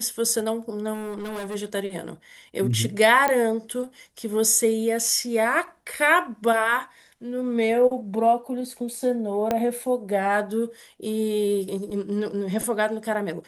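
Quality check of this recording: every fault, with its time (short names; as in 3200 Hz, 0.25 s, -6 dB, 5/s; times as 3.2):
0.93–1.56 clipped -28.5 dBFS
3.28 pop -9 dBFS
9.51 pop -10 dBFS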